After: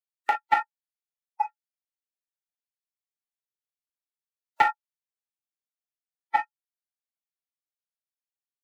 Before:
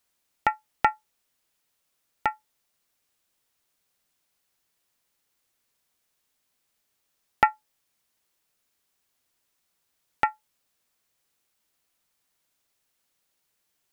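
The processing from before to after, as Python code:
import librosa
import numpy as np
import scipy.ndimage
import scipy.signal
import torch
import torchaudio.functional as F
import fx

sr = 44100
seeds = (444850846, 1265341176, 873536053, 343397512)

y = scipy.signal.sosfilt(scipy.signal.butter(2, 520.0, 'highpass', fs=sr, output='sos'), x)
y = fx.rev_gated(y, sr, seeds[0], gate_ms=170, shape='falling', drr_db=-2.5)
y = 10.0 ** (-6.5 / 20.0) * np.tanh(y / 10.0 ** (-6.5 / 20.0))
y = fx.stretch_grains(y, sr, factor=0.62, grain_ms=41.0)
y = fx.noise_reduce_blind(y, sr, reduce_db=30)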